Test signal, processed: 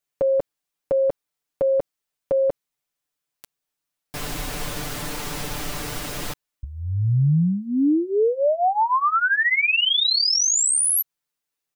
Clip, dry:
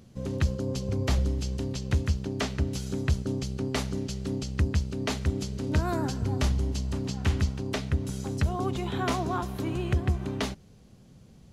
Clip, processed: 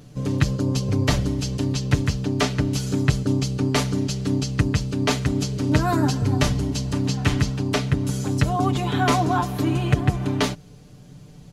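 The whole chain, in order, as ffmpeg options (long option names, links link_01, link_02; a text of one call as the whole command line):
ffmpeg -i in.wav -af "aecho=1:1:6.8:0.8,volume=6.5dB" out.wav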